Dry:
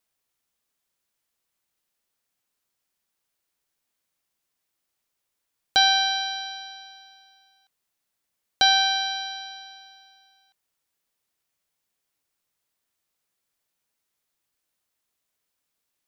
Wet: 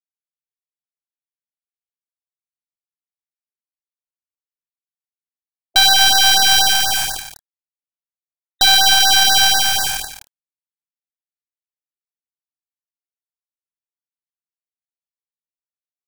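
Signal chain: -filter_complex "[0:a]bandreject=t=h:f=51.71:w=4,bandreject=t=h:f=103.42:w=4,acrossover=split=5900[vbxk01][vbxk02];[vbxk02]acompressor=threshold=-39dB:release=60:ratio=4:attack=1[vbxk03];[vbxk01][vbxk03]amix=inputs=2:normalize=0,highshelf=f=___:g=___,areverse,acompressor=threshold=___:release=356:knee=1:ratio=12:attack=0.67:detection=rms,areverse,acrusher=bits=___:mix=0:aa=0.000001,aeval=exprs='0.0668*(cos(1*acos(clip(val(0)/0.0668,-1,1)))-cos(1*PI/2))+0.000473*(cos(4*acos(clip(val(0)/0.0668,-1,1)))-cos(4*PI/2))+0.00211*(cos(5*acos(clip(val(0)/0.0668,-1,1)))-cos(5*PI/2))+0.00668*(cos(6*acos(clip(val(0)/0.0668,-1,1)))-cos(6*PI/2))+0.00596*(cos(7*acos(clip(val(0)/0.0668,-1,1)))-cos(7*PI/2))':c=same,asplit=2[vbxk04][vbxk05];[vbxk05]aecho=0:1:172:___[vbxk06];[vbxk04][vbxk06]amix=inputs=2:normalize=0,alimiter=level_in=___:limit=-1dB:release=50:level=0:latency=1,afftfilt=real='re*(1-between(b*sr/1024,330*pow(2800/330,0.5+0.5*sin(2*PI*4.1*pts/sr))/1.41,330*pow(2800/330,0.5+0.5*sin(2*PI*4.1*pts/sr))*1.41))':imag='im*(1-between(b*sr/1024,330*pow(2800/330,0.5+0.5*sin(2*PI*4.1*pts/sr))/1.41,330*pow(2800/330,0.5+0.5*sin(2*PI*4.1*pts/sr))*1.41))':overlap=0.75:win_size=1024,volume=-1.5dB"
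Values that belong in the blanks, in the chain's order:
3.9k, 9.5, -28dB, 6, 0.316, 27.5dB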